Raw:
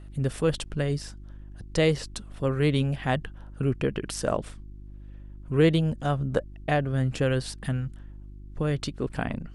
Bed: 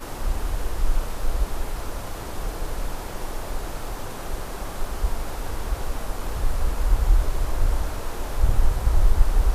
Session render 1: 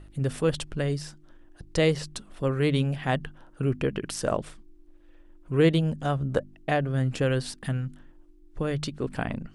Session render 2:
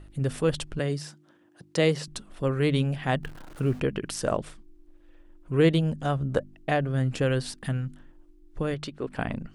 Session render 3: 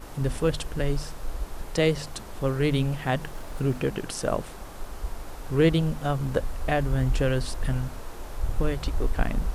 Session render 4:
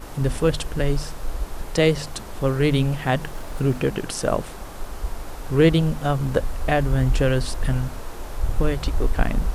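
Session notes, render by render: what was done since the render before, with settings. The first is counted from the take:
de-hum 50 Hz, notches 5
0.79–2.08 s: high-pass 130 Hz 24 dB/octave; 3.23–3.80 s: jump at every zero crossing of -41.5 dBFS; 8.74–9.19 s: tone controls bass -8 dB, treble -7 dB
add bed -8.5 dB
trim +4.5 dB

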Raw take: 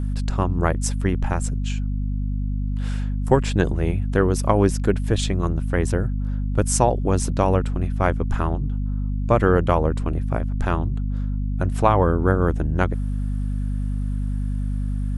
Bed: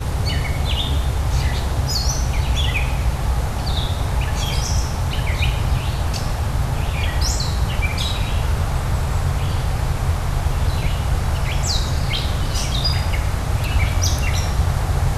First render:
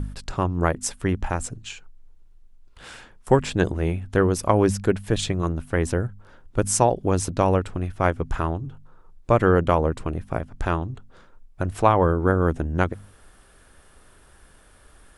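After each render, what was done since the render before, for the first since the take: de-hum 50 Hz, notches 5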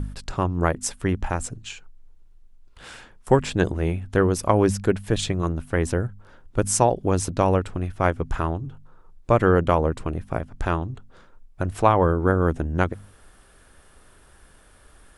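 no audible change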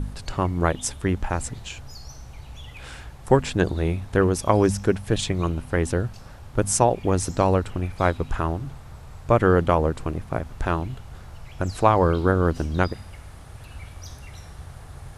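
add bed -21.5 dB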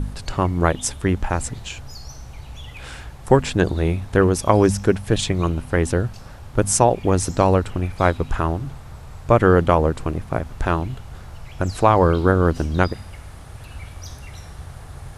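trim +3.5 dB; peak limiter -1 dBFS, peak gain reduction 2 dB

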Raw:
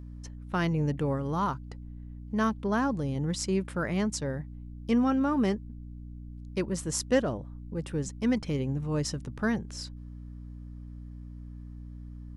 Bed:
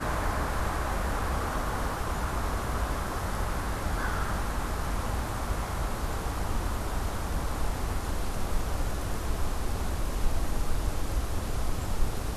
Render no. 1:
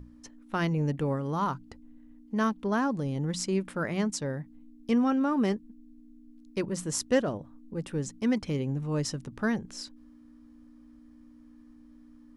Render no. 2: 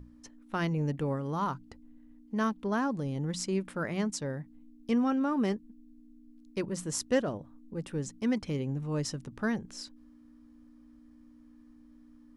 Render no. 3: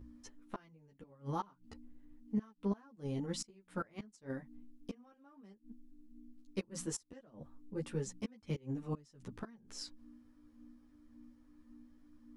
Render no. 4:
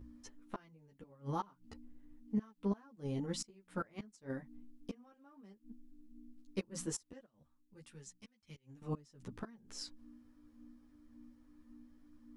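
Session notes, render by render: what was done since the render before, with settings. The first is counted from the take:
hum notches 60/120/180 Hz
trim -2.5 dB
inverted gate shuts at -24 dBFS, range -27 dB; three-phase chorus
7.26–8.82 s: amplifier tone stack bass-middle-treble 5-5-5

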